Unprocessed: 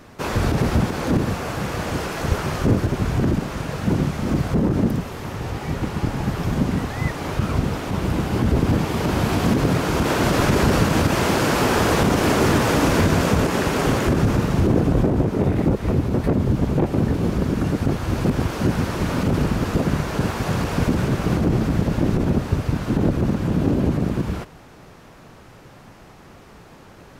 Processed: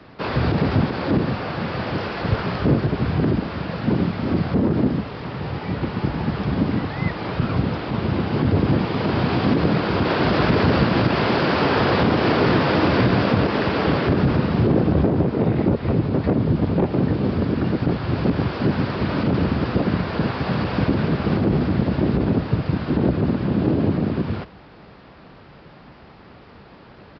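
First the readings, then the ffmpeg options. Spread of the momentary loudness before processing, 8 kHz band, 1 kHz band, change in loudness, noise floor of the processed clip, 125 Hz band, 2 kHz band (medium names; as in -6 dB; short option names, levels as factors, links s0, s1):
7 LU, under -20 dB, 0.0 dB, 0.0 dB, -45 dBFS, -0.5 dB, 0.0 dB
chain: -af "afreqshift=28,aresample=11025,aresample=44100"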